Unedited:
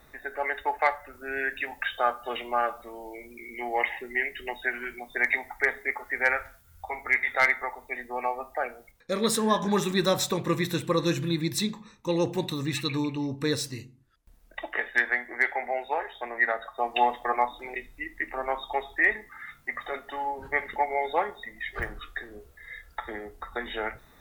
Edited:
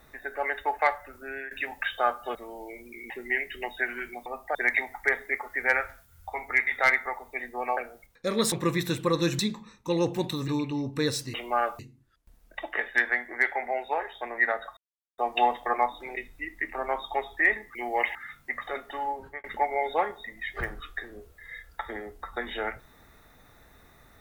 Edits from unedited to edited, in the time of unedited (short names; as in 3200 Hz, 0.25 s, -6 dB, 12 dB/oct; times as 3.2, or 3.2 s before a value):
1.16–1.51 fade out, to -14.5 dB
2.35–2.8 move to 13.79
3.55–3.95 move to 19.34
8.33–8.62 move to 5.11
9.37–10.36 cut
11.23–11.58 cut
12.67–12.93 cut
16.77 insert silence 0.41 s
20.3–20.63 fade out